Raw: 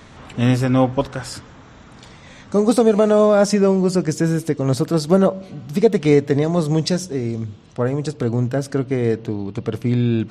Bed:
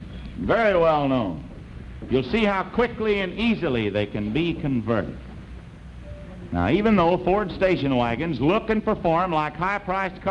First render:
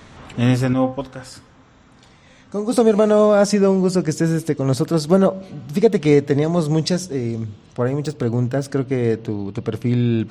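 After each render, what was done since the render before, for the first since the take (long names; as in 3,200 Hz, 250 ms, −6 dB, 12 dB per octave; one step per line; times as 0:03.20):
0:00.73–0:02.73: tuned comb filter 260 Hz, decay 0.33 s
0:07.87–0:08.65: running median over 3 samples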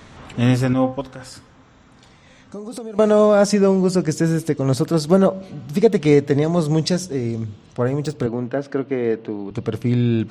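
0:01.01–0:02.99: downward compressor, threshold −29 dBFS
0:08.26–0:09.51: band-pass filter 230–3,100 Hz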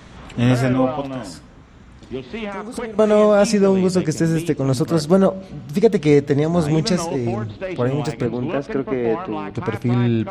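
mix in bed −7.5 dB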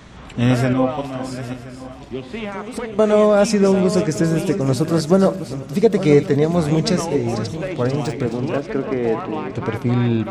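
feedback delay that plays each chunk backwards 512 ms, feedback 46%, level −11 dB
delay with a high-pass on its return 490 ms, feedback 36%, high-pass 2,200 Hz, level −14.5 dB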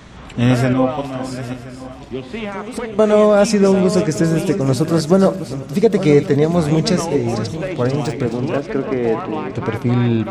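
level +2 dB
brickwall limiter −2 dBFS, peak gain reduction 2 dB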